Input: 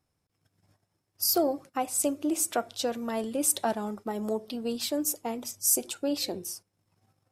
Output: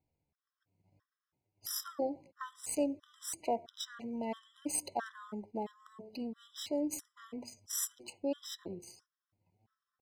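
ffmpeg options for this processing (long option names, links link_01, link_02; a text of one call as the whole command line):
ffmpeg -i in.wav -af "adynamicsmooth=sensitivity=6:basefreq=3900,atempo=0.73,afftfilt=real='re*gt(sin(2*PI*1.5*pts/sr)*(1-2*mod(floor(b*sr/1024/1000),2)),0)':imag='im*gt(sin(2*PI*1.5*pts/sr)*(1-2*mod(floor(b*sr/1024/1000),2)),0)':win_size=1024:overlap=0.75,volume=-4.5dB" out.wav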